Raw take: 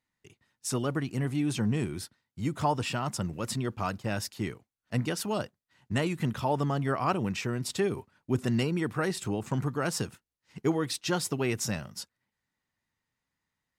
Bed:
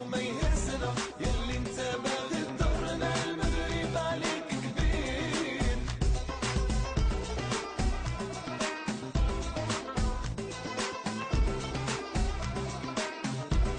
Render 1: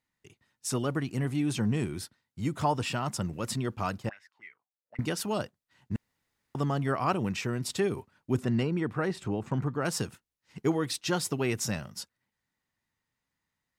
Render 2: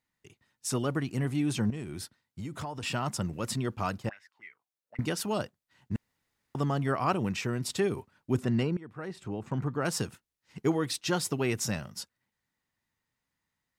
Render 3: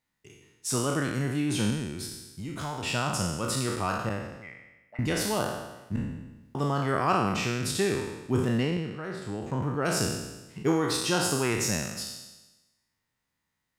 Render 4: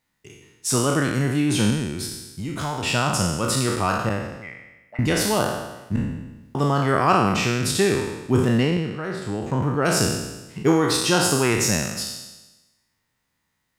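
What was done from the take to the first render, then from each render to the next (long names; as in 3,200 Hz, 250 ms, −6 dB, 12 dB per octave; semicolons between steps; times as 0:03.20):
0:04.09–0:04.99: envelope filter 430–2,100 Hz, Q 10, up, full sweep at −29 dBFS; 0:05.96–0:06.55: fill with room tone; 0:08.44–0:09.85: low-pass filter 2,100 Hz 6 dB per octave
0:01.70–0:02.83: downward compressor, threshold −34 dBFS; 0:08.77–0:09.79: fade in, from −19 dB
peak hold with a decay on every bin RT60 1.09 s
level +7 dB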